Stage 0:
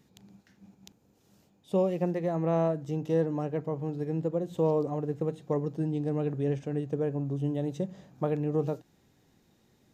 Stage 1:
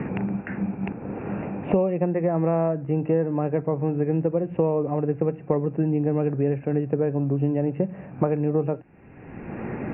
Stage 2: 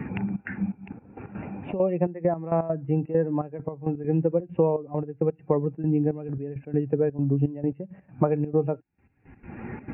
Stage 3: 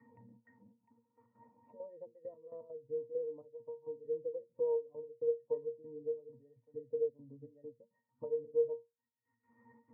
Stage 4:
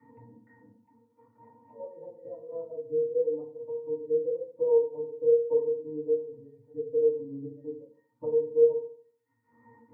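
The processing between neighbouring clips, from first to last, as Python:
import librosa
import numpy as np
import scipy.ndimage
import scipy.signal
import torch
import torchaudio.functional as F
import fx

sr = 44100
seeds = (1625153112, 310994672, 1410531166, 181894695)

y1 = scipy.signal.sosfilt(scipy.signal.cheby1(8, 1.0, 2700.0, 'lowpass', fs=sr, output='sos'), x)
y1 = fx.band_squash(y1, sr, depth_pct=100)
y1 = F.gain(torch.from_numpy(y1), 6.5).numpy()
y2 = fx.bin_expand(y1, sr, power=1.5)
y2 = fx.step_gate(y2, sr, bpm=167, pattern='xxxx.xxx..x..x.', floor_db=-12.0, edge_ms=4.5)
y2 = F.gain(torch.from_numpy(y2), 2.5).numpy()
y3 = fx.auto_wah(y2, sr, base_hz=530.0, top_hz=1500.0, q=2.2, full_db=-26.0, direction='down')
y3 = fx.octave_resonator(y3, sr, note='A#', decay_s=0.2)
y3 = F.gain(torch.from_numpy(y3), -2.0).numpy()
y4 = fx.rev_fdn(y3, sr, rt60_s=0.53, lf_ratio=1.1, hf_ratio=0.3, size_ms=20.0, drr_db=-5.5)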